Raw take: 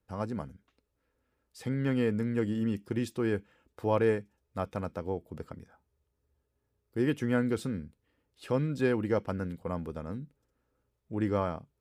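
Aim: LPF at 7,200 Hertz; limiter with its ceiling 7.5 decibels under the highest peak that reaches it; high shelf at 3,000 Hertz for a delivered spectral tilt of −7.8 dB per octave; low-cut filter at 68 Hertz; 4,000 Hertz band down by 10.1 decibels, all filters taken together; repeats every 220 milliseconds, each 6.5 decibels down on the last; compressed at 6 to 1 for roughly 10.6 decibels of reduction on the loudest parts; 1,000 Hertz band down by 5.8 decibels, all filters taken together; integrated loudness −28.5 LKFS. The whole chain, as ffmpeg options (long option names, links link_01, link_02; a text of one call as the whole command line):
ffmpeg -i in.wav -af "highpass=68,lowpass=7200,equalizer=frequency=1000:width_type=o:gain=-6,highshelf=frequency=3000:gain=-9,equalizer=frequency=4000:width_type=o:gain=-6.5,acompressor=threshold=-35dB:ratio=6,alimiter=level_in=7dB:limit=-24dB:level=0:latency=1,volume=-7dB,aecho=1:1:220|440|660|880|1100|1320:0.473|0.222|0.105|0.0491|0.0231|0.0109,volume=14dB" out.wav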